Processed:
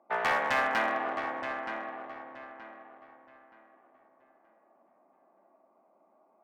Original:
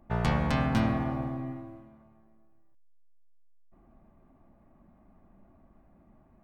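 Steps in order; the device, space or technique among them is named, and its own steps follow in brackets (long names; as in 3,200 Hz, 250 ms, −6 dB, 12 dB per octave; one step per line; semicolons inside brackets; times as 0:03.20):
adaptive Wiener filter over 25 samples
high-pass filter 290 Hz 12 dB per octave
megaphone (band-pass filter 610–3,200 Hz; parametric band 1,800 Hz +7 dB 0.6 octaves; hard clipping −28 dBFS, distortion −14 dB)
parametric band 4,400 Hz −4 dB 0.59 octaves
feedback echo with a low-pass in the loop 924 ms, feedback 30%, low-pass 3,300 Hz, level −8 dB
level +6.5 dB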